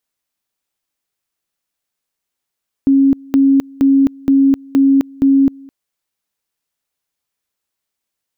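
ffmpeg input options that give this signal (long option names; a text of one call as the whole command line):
ffmpeg -f lavfi -i "aevalsrc='pow(10,(-7-26.5*gte(mod(t,0.47),0.26))/20)*sin(2*PI*273*t)':duration=2.82:sample_rate=44100" out.wav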